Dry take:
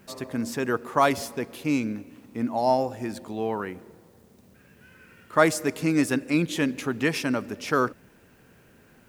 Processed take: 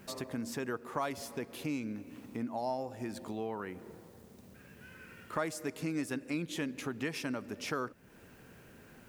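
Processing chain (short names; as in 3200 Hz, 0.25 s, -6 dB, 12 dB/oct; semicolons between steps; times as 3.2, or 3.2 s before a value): compressor 2.5:1, threshold -39 dBFS, peak gain reduction 17 dB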